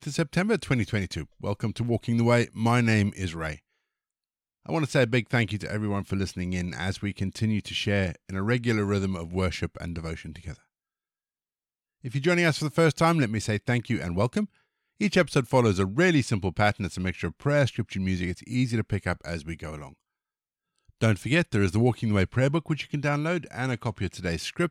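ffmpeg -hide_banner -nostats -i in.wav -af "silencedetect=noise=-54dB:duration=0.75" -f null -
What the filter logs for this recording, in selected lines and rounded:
silence_start: 3.59
silence_end: 4.65 | silence_duration: 1.06
silence_start: 10.60
silence_end: 12.04 | silence_duration: 1.43
silence_start: 19.93
silence_end: 20.79 | silence_duration: 0.85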